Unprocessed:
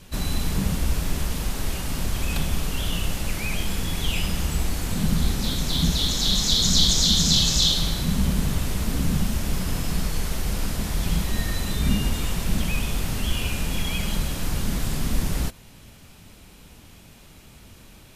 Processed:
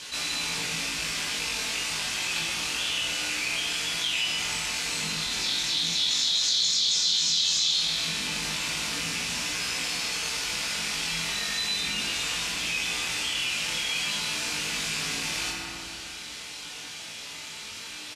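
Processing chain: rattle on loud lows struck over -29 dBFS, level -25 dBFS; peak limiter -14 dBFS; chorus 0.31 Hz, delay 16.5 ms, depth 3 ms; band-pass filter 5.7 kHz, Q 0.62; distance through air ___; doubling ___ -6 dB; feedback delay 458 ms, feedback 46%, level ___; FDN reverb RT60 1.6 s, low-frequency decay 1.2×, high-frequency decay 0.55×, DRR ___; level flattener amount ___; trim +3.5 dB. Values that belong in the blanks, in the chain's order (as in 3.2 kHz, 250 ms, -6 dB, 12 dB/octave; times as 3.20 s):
55 m, 24 ms, -22.5 dB, 1.5 dB, 50%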